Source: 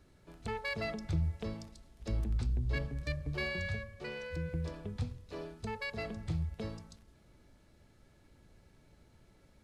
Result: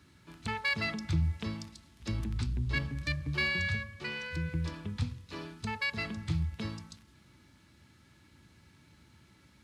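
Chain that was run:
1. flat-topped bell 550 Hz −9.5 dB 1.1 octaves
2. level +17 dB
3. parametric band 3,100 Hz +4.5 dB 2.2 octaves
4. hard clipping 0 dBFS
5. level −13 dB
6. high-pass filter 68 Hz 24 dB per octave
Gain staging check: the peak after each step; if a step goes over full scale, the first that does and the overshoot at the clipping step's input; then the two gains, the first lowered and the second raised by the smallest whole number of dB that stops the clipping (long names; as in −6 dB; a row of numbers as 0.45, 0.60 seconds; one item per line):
−22.5, −5.5, −5.0, −5.0, −18.0, −17.5 dBFS
no step passes full scale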